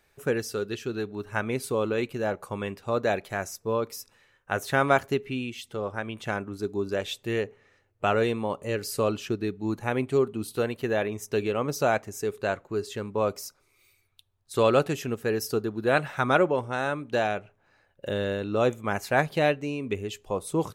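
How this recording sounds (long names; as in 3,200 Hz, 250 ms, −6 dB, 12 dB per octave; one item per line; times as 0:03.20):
background noise floor −68 dBFS
spectral slope −5.5 dB per octave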